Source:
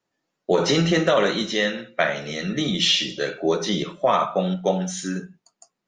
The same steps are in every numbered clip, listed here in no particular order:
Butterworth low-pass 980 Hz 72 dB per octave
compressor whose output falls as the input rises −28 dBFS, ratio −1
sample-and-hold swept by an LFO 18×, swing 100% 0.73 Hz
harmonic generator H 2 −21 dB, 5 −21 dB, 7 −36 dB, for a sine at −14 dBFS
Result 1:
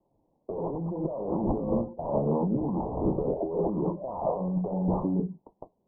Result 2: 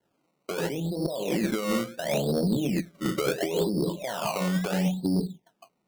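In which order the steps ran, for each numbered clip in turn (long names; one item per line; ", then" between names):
harmonic generator, then compressor whose output falls as the input rises, then sample-and-hold swept by an LFO, then Butterworth low-pass
compressor whose output falls as the input rises, then Butterworth low-pass, then harmonic generator, then sample-and-hold swept by an LFO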